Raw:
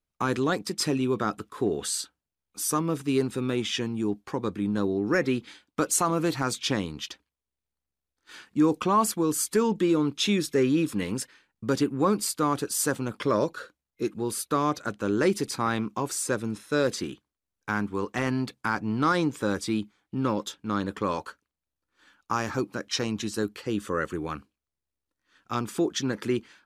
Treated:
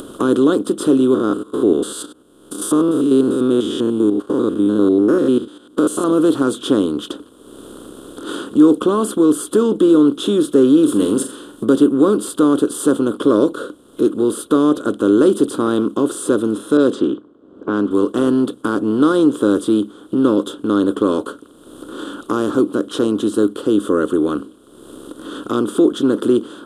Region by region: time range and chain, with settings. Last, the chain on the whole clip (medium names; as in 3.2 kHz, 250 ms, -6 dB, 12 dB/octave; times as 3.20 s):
1.14–6.04 s: spectrogram pixelated in time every 100 ms + gate -43 dBFS, range -15 dB
10.83–11.65 s: treble shelf 3.8 kHz +11.5 dB + flutter echo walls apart 7.5 m, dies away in 0.22 s
16.77–17.91 s: band-pass 110–6900 Hz + level-controlled noise filter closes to 660 Hz, open at -20 dBFS
whole clip: spectral levelling over time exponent 0.6; FFT filter 180 Hz 0 dB, 270 Hz +13 dB, 500 Hz +8 dB, 840 Hz -5 dB, 1.4 kHz +3 dB, 2.2 kHz -23 dB, 3.2 kHz +4 dB, 5.4 kHz -14 dB, 9.2 kHz +2 dB, 14 kHz -9 dB; upward compressor, threshold -17 dBFS; trim -1 dB